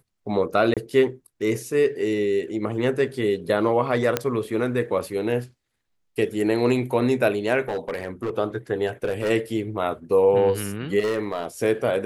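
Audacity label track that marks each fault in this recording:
0.740000	0.770000	drop-out 27 ms
4.170000	4.170000	click −6 dBFS
7.680000	8.380000	clipping −22 dBFS
8.860000	9.310000	clipping −19.5 dBFS
10.990000	11.460000	clipping −19.5 dBFS

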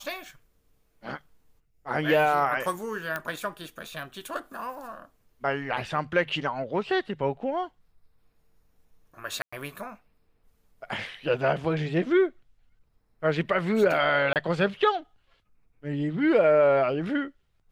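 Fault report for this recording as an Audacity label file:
3.160000	3.160000	click −16 dBFS
9.420000	9.530000	drop-out 105 ms
14.330000	14.360000	drop-out 28 ms

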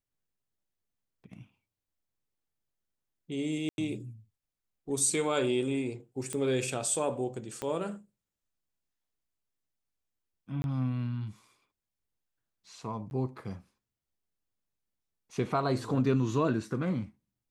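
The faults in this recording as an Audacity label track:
3.690000	3.780000	drop-out 91 ms
6.330000	6.330000	click −21 dBFS
7.620000	7.620000	click −20 dBFS
10.620000	10.640000	drop-out 21 ms
13.100000	13.110000	drop-out 11 ms

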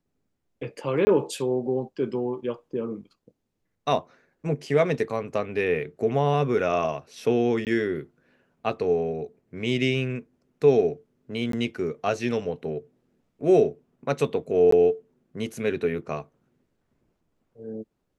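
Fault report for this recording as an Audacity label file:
1.050000	1.070000	drop-out 20 ms
7.650000	7.670000	drop-out 18 ms
11.520000	11.530000	drop-out 13 ms
14.710000	14.720000	drop-out 14 ms

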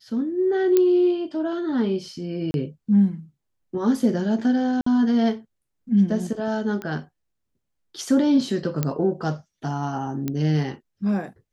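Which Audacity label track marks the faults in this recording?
0.770000	0.770000	click −7 dBFS
2.510000	2.540000	drop-out 31 ms
4.810000	4.860000	drop-out 54 ms
6.820000	6.820000	click −19 dBFS
8.830000	8.830000	click −9 dBFS
10.280000	10.280000	click −13 dBFS

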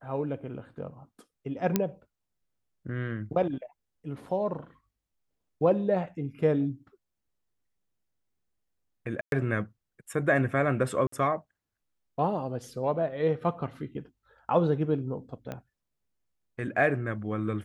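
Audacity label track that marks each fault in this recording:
1.760000	1.760000	click −9 dBFS
9.210000	9.320000	drop-out 112 ms
11.070000	11.120000	drop-out 54 ms
15.520000	15.520000	click −22 dBFS

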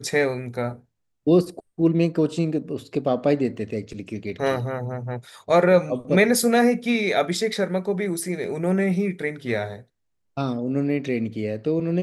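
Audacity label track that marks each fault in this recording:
3.570000	3.570000	drop-out 2.3 ms

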